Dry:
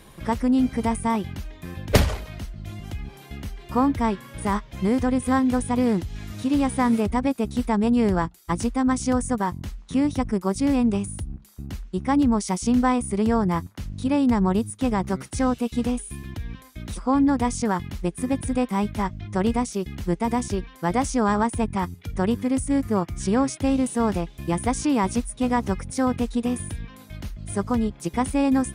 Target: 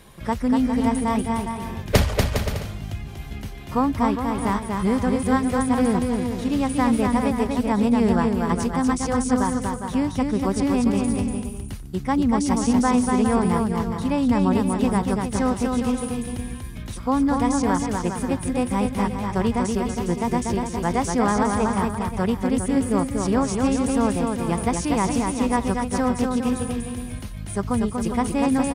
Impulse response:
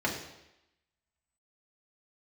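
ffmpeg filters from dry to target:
-af "equalizer=f=310:w=7.4:g=-5,aecho=1:1:240|408|525.6|607.9|665.5:0.631|0.398|0.251|0.158|0.1"

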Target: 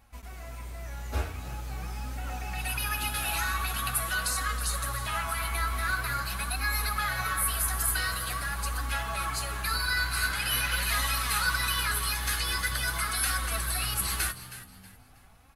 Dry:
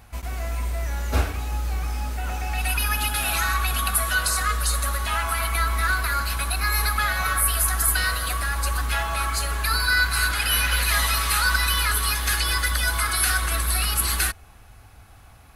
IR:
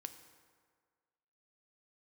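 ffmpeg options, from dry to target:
-filter_complex "[0:a]asplit=4[a][b][c][d];[b]adelay=319,afreqshift=64,volume=-14dB[e];[c]adelay=638,afreqshift=128,volume=-24.2dB[f];[d]adelay=957,afreqshift=192,volume=-34.3dB[g];[a][e][f][g]amix=inputs=4:normalize=0,flanger=delay=3.6:depth=9.6:regen=42:speed=0.45:shape=sinusoidal,dynaudnorm=f=430:g=7:m=4.5dB,volume=-7dB"

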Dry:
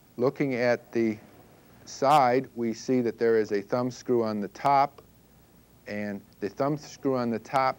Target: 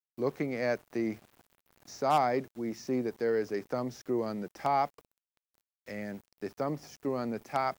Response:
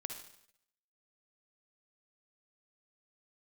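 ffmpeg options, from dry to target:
-af "aeval=exprs='val(0)*gte(abs(val(0)),0.00473)':c=same,volume=-6dB"

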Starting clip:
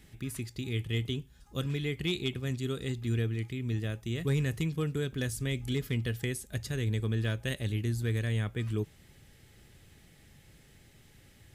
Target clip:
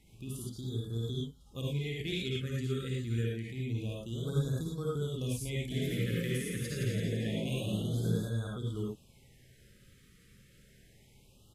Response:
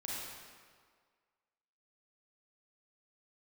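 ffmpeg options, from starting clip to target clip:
-filter_complex "[0:a]asplit=3[a][b][c];[a]afade=t=out:st=5.7:d=0.02[d];[b]asplit=8[e][f][g][h][i][j][k][l];[f]adelay=168,afreqshift=51,volume=-3.5dB[m];[g]adelay=336,afreqshift=102,volume=-9.2dB[n];[h]adelay=504,afreqshift=153,volume=-14.9dB[o];[i]adelay=672,afreqshift=204,volume=-20.5dB[p];[j]adelay=840,afreqshift=255,volume=-26.2dB[q];[k]adelay=1008,afreqshift=306,volume=-31.9dB[r];[l]adelay=1176,afreqshift=357,volume=-37.6dB[s];[e][m][n][o][p][q][r][s]amix=inputs=8:normalize=0,afade=t=in:st=5.7:d=0.02,afade=t=out:st=8.17:d=0.02[t];[c]afade=t=in:st=8.17:d=0.02[u];[d][t][u]amix=inputs=3:normalize=0[v];[1:a]atrim=start_sample=2205,atrim=end_sample=3528,asetrate=28665,aresample=44100[w];[v][w]afir=irnorm=-1:irlink=0,afftfilt=real='re*(1-between(b*sr/1024,770*pow(2400/770,0.5+0.5*sin(2*PI*0.27*pts/sr))/1.41,770*pow(2400/770,0.5+0.5*sin(2*PI*0.27*pts/sr))*1.41))':imag='im*(1-between(b*sr/1024,770*pow(2400/770,0.5+0.5*sin(2*PI*0.27*pts/sr))/1.41,770*pow(2400/770,0.5+0.5*sin(2*PI*0.27*pts/sr))*1.41))':win_size=1024:overlap=0.75,volume=-3.5dB"

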